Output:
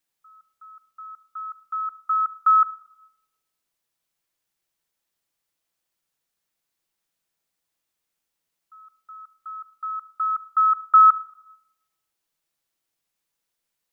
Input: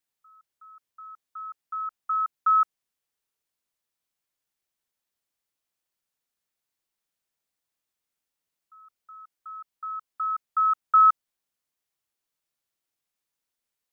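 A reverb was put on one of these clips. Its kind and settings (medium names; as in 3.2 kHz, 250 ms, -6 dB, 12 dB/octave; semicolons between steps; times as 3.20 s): simulated room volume 3400 m³, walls furnished, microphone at 0.71 m; trim +4 dB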